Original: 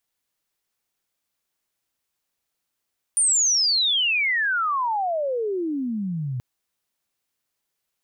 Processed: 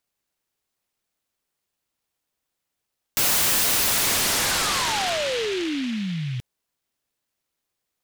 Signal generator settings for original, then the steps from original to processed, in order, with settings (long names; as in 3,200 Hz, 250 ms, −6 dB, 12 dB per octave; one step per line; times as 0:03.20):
glide logarithmic 9,400 Hz → 120 Hz −16 dBFS → −25 dBFS 3.23 s
short delay modulated by noise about 2,600 Hz, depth 0.19 ms